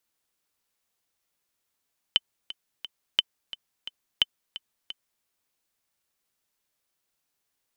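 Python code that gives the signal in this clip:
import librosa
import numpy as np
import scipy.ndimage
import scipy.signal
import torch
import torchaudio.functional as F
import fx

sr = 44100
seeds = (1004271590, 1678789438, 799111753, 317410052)

y = fx.click_track(sr, bpm=175, beats=3, bars=3, hz=3050.0, accent_db=16.5, level_db=-6.0)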